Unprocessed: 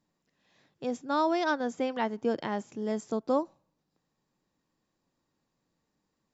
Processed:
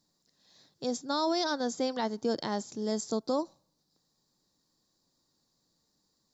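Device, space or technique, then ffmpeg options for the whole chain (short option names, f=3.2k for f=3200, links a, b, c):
over-bright horn tweeter: -af "highshelf=f=3.4k:t=q:w=3:g=8,alimiter=limit=-20.5dB:level=0:latency=1:release=16"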